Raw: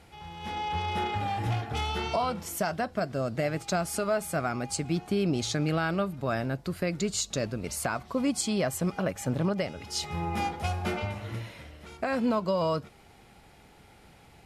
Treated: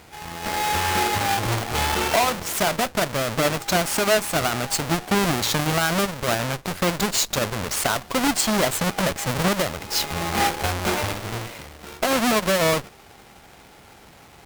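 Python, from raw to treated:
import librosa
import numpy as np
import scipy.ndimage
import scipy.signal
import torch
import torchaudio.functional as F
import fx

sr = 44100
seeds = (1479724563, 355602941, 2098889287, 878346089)

y = fx.halfwave_hold(x, sr)
y = fx.cheby_harmonics(y, sr, harmonics=(8,), levels_db=(-13,), full_scale_db=-17.5)
y = fx.low_shelf(y, sr, hz=330.0, db=-9.5)
y = y * 10.0 ** (6.0 / 20.0)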